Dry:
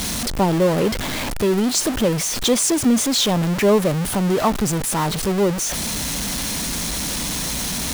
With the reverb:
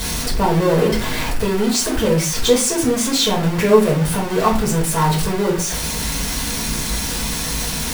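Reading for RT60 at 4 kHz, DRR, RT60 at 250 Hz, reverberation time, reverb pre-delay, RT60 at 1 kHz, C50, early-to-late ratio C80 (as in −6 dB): 0.30 s, −4.5 dB, 0.55 s, 0.40 s, 4 ms, 0.40 s, 8.5 dB, 14.0 dB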